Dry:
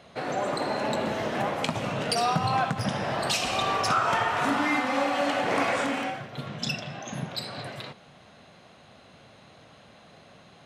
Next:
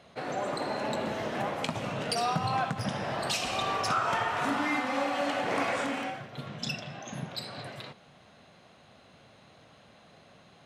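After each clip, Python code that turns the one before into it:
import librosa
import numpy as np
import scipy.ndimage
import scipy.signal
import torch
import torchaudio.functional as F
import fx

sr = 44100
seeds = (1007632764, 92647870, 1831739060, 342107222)

y = fx.attack_slew(x, sr, db_per_s=580.0)
y = y * 10.0 ** (-4.0 / 20.0)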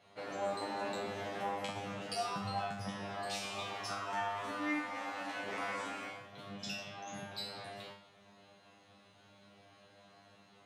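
y = fx.low_shelf(x, sr, hz=78.0, db=-9.0)
y = fx.rider(y, sr, range_db=3, speed_s=2.0)
y = fx.comb_fb(y, sr, f0_hz=100.0, decay_s=0.46, harmonics='all', damping=0.0, mix_pct=100)
y = y * 10.0 ** (3.5 / 20.0)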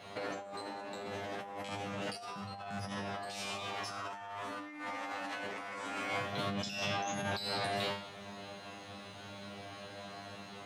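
y = fx.over_compress(x, sr, threshold_db=-48.0, ratio=-1.0)
y = y * 10.0 ** (7.5 / 20.0)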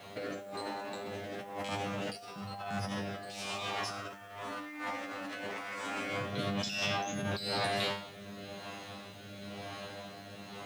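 y = fx.rotary(x, sr, hz=1.0)
y = fx.quant_dither(y, sr, seeds[0], bits=12, dither='triangular')
y = y * 10.0 ** (4.5 / 20.0)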